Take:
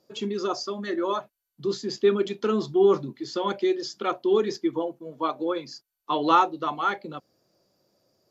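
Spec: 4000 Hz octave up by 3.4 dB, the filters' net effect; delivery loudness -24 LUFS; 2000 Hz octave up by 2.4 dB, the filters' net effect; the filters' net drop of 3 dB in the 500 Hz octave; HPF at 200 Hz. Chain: HPF 200 Hz; bell 500 Hz -4 dB; bell 2000 Hz +3 dB; bell 4000 Hz +3.5 dB; gain +3.5 dB

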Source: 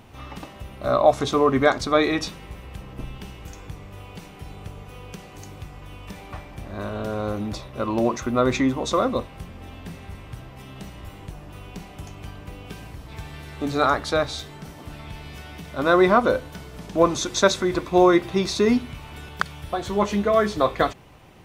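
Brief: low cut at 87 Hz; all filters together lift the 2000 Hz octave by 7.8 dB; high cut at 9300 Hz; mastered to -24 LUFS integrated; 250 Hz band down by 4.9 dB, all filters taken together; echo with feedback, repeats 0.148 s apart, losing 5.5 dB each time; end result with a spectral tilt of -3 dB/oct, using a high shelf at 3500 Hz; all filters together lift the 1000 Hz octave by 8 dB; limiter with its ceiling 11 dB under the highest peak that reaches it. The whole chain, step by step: HPF 87 Hz; LPF 9300 Hz; bell 250 Hz -8 dB; bell 1000 Hz +8.5 dB; bell 2000 Hz +5 dB; high shelf 3500 Hz +7.5 dB; limiter -6 dBFS; feedback echo 0.148 s, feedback 53%, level -5.5 dB; gain -4.5 dB

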